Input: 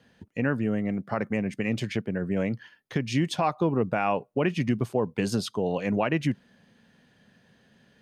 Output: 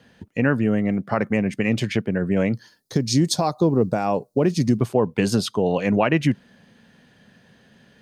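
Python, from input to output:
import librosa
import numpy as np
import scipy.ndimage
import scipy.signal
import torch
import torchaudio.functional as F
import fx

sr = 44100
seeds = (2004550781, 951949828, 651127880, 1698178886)

y = fx.curve_eq(x, sr, hz=(450.0, 2900.0, 4200.0), db=(0, -14, 8), at=(2.55, 4.78))
y = y * 10.0 ** (6.5 / 20.0)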